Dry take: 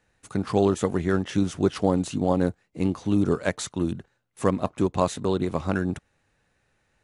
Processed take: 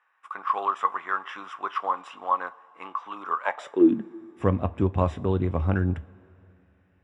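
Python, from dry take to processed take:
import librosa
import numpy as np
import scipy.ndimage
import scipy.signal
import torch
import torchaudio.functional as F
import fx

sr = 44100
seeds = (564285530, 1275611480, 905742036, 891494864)

y = scipy.signal.savgol_filter(x, 25, 4, mode='constant')
y = fx.filter_sweep_highpass(y, sr, from_hz=1100.0, to_hz=76.0, start_s=3.41, end_s=4.38, q=7.1)
y = fx.rev_double_slope(y, sr, seeds[0], early_s=0.22, late_s=3.1, knee_db=-21, drr_db=12.0)
y = y * librosa.db_to_amplitude(-2.5)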